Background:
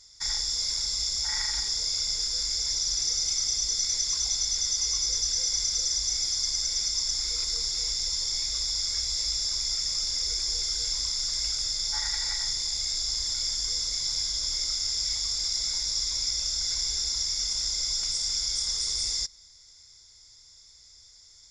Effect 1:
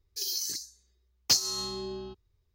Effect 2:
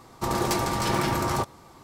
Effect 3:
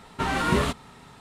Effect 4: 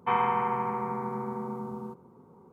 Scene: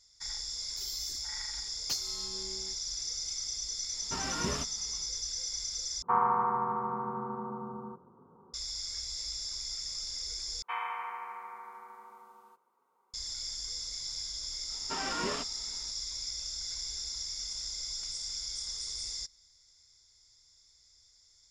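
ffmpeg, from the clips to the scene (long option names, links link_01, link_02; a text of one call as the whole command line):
ffmpeg -i bed.wav -i cue0.wav -i cue1.wav -i cue2.wav -i cue3.wav -filter_complex "[3:a]asplit=2[link_01][link_02];[4:a]asplit=2[link_03][link_04];[0:a]volume=-9.5dB[link_05];[link_03]highshelf=frequency=1900:width_type=q:width=3:gain=-13[link_06];[link_04]highpass=1500[link_07];[link_02]highpass=260,lowpass=6700[link_08];[link_05]asplit=3[link_09][link_10][link_11];[link_09]atrim=end=6.024[link_12];[link_06]atrim=end=2.52,asetpts=PTS-STARTPTS,volume=-5.5dB[link_13];[link_10]atrim=start=8.536:end=10.624[link_14];[link_07]atrim=end=2.52,asetpts=PTS-STARTPTS,volume=-2.5dB[link_15];[link_11]atrim=start=13.136[link_16];[1:a]atrim=end=2.54,asetpts=PTS-STARTPTS,volume=-11dB,afade=type=in:duration=0.004:curve=hsin,afade=type=out:start_time=2.536:duration=0.004:curve=hsin,adelay=600[link_17];[link_01]atrim=end=1.2,asetpts=PTS-STARTPTS,volume=-12dB,afade=type=in:duration=0.1,afade=type=out:start_time=1.1:duration=0.1,adelay=3920[link_18];[link_08]atrim=end=1.2,asetpts=PTS-STARTPTS,volume=-10dB,afade=type=in:duration=0.004:curve=hsin,afade=type=out:start_time=1.196:duration=0.004:curve=hsin,adelay=14710[link_19];[link_12][link_13]acrossfade=duration=0.004:curve1=hsin:curve2=hsin[link_20];[link_20][link_14]acrossfade=duration=0.004:curve1=hsin:curve2=hsin[link_21];[link_21][link_15]acrossfade=duration=0.004:curve1=hsin:curve2=hsin[link_22];[link_22][link_16]acrossfade=duration=0.004:curve1=hsin:curve2=hsin[link_23];[link_23][link_17][link_18][link_19]amix=inputs=4:normalize=0" out.wav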